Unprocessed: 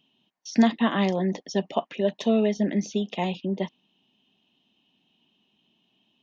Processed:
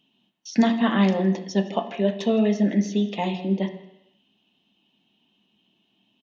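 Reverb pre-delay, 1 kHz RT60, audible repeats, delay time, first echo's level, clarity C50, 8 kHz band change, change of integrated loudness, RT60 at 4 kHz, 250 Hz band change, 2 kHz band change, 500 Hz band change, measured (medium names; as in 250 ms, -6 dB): 3 ms, 0.85 s, 1, 163 ms, -21.0 dB, 10.0 dB, no reading, +2.5 dB, 0.85 s, +3.0 dB, +1.5 dB, +1.0 dB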